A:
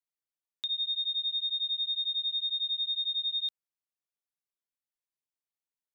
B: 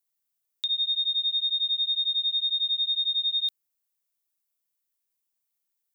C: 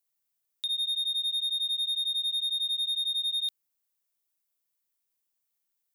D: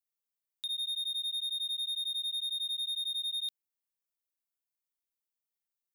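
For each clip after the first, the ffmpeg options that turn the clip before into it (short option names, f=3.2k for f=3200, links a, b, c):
-af "aemphasis=mode=production:type=50kf,volume=1.5dB"
-af "asoftclip=type=tanh:threshold=-25.5dB"
-af "aeval=exprs='0.0531*(cos(1*acos(clip(val(0)/0.0531,-1,1)))-cos(1*PI/2))+0.00376*(cos(7*acos(clip(val(0)/0.0531,-1,1)))-cos(7*PI/2))':c=same,volume=-5dB"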